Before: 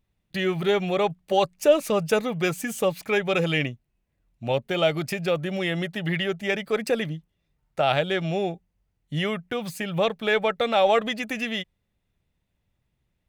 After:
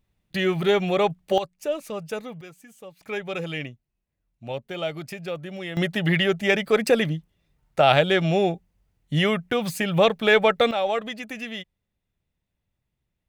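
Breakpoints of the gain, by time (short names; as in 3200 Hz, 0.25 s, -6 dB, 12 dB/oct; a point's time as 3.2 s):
+2 dB
from 1.38 s -9 dB
from 2.41 s -19.5 dB
from 3.01 s -7 dB
from 5.77 s +5 dB
from 10.71 s -5 dB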